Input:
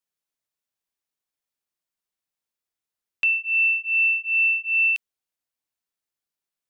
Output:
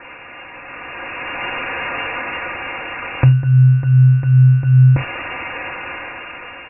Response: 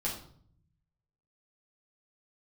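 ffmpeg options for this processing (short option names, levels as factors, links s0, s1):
-filter_complex "[0:a]aeval=exprs='val(0)+0.5*0.0299*sgn(val(0))':c=same,aecho=1:1:4.4:0.68,asplit=2[s0][s1];[1:a]atrim=start_sample=2205,atrim=end_sample=3969[s2];[s1][s2]afir=irnorm=-1:irlink=0,volume=0.335[s3];[s0][s3]amix=inputs=2:normalize=0,dynaudnorm=f=490:g=5:m=5.62,lowpass=f=2400:t=q:w=0.5098,lowpass=f=2400:t=q:w=0.6013,lowpass=f=2400:t=q:w=0.9,lowpass=f=2400:t=q:w=2.563,afreqshift=-2800,volume=2.11"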